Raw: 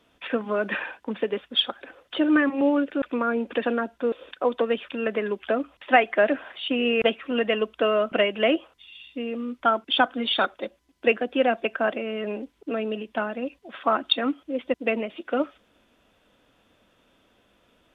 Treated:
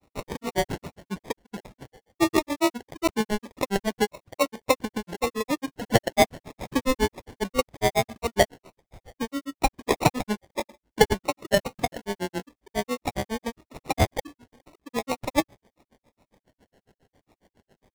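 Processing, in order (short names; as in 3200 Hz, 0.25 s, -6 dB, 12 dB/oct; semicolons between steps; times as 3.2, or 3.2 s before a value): sample-rate reducer 1400 Hz, jitter 0%; grains, grains 7.3/s, pitch spread up and down by 3 st; gain +4 dB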